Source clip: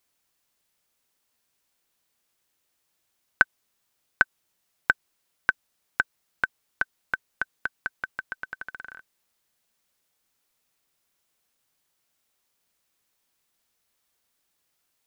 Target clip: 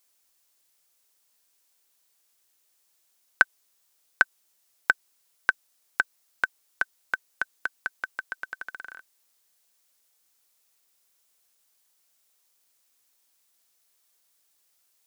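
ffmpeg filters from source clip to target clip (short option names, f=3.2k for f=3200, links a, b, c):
-af "bass=f=250:g=-10,treble=f=4k:g=7"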